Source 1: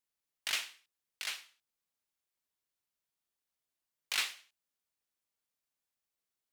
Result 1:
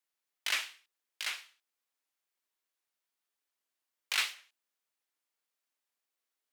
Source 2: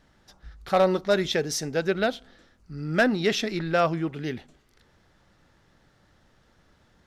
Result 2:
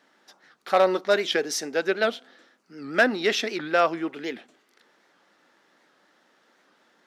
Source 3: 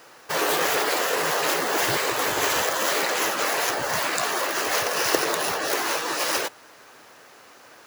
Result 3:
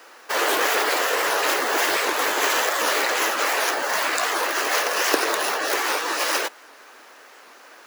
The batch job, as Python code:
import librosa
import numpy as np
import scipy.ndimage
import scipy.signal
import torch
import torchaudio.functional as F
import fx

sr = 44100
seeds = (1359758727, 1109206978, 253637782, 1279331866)

y = scipy.signal.sosfilt(scipy.signal.butter(4, 250.0, 'highpass', fs=sr, output='sos'), x)
y = fx.peak_eq(y, sr, hz=1700.0, db=3.5, octaves=2.2)
y = fx.record_warp(y, sr, rpm=78.0, depth_cents=160.0)